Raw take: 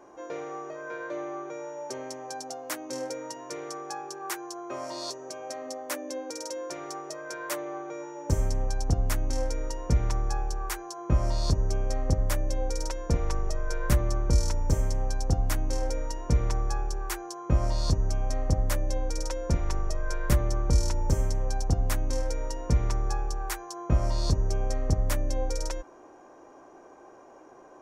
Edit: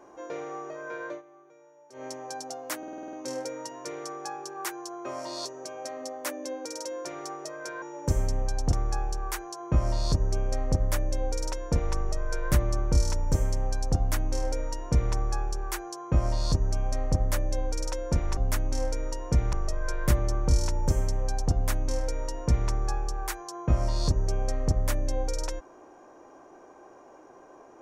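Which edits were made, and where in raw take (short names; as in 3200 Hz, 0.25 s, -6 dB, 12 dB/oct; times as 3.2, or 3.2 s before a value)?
1.09–2.05 dip -18.5 dB, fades 0.13 s
2.78 stutter 0.05 s, 8 plays
7.47–8.04 cut
8.95–10.11 move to 19.75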